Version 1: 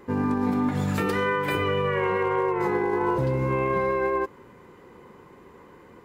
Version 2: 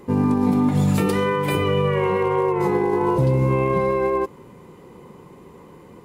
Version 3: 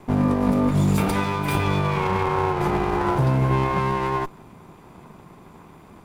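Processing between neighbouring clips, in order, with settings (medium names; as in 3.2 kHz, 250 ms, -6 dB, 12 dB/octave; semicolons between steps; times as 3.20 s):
fifteen-band graphic EQ 160 Hz +6 dB, 1.6 kHz -9 dB, 10 kHz +6 dB; trim +4.5 dB
comb filter that takes the minimum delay 0.83 ms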